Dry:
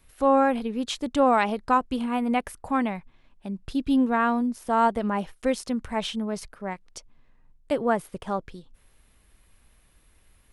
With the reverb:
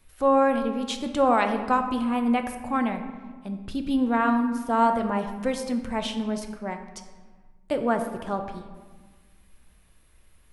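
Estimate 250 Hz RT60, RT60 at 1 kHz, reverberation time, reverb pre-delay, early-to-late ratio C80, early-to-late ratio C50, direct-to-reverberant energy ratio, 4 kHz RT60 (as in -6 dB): 2.1 s, 1.5 s, 1.5 s, 5 ms, 10.0 dB, 8.5 dB, 6.0 dB, 0.85 s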